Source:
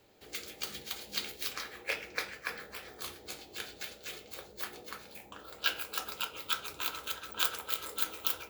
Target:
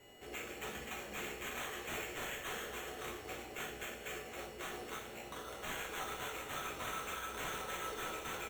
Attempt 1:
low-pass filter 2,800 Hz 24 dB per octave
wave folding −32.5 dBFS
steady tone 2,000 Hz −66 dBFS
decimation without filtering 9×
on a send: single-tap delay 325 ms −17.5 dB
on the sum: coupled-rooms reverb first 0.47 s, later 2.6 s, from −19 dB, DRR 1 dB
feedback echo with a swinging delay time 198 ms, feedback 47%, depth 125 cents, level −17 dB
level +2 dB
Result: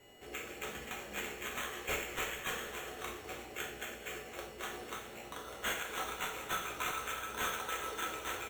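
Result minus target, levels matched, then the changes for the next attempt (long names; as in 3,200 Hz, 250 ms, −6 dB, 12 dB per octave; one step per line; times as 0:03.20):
wave folding: distortion −6 dB
change: wave folding −40.5 dBFS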